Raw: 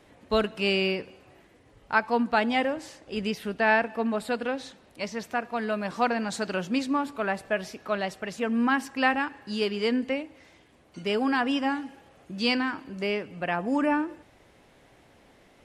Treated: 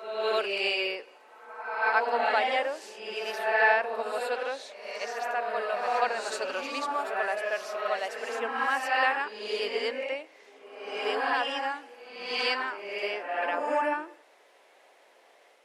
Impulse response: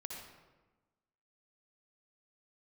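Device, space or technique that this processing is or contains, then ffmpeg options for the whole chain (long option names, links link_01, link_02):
ghost voice: -filter_complex "[0:a]areverse[link_01];[1:a]atrim=start_sample=2205[link_02];[link_01][link_02]afir=irnorm=-1:irlink=0,areverse,highpass=frequency=440:width=0.5412,highpass=frequency=440:width=1.3066,volume=2.5dB"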